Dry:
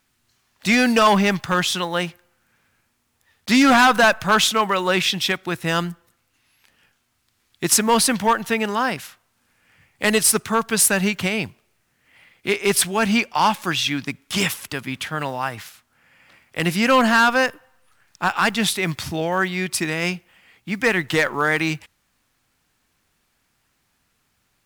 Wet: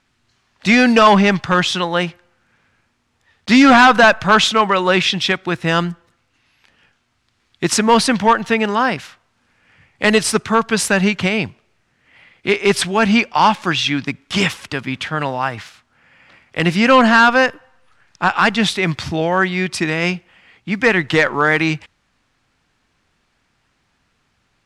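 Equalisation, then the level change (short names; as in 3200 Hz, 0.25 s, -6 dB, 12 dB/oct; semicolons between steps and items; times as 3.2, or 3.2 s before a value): air absorption 88 m; +5.5 dB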